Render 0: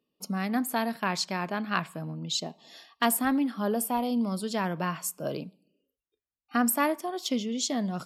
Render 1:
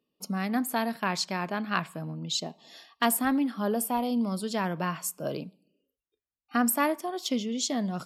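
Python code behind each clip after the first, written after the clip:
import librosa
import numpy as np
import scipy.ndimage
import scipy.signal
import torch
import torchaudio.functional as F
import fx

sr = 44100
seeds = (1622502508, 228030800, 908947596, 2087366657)

y = x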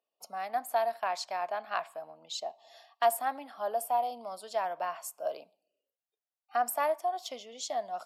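y = fx.highpass_res(x, sr, hz=690.0, q=4.9)
y = y * librosa.db_to_amplitude(-8.5)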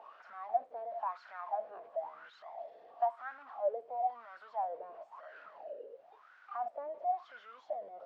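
y = x + 0.5 * 10.0 ** (-32.5 / 20.0) * np.sign(x)
y = fx.wah_lfo(y, sr, hz=0.98, low_hz=450.0, high_hz=1500.0, q=10.0)
y = scipy.ndimage.gaussian_filter1d(y, 1.7, mode='constant')
y = y * librosa.db_to_amplitude(2.0)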